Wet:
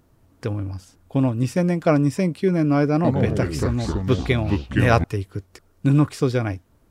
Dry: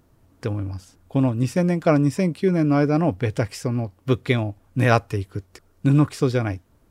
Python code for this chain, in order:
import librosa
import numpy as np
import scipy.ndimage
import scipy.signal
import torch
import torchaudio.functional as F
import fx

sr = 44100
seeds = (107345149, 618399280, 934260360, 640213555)

y = fx.echo_pitch(x, sr, ms=111, semitones=-4, count=3, db_per_echo=-3.0, at=(2.93, 5.04))